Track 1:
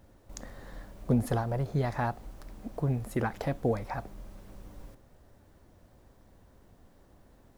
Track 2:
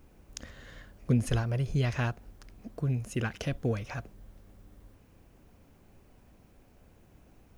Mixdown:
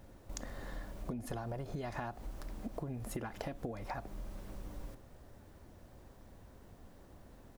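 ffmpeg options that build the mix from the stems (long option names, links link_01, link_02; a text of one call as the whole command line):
ffmpeg -i stem1.wav -i stem2.wav -filter_complex "[0:a]acompressor=threshold=-31dB:ratio=6,volume=2dB[link_01];[1:a]adelay=3,volume=-11dB[link_02];[link_01][link_02]amix=inputs=2:normalize=0,acompressor=threshold=-38dB:ratio=4" out.wav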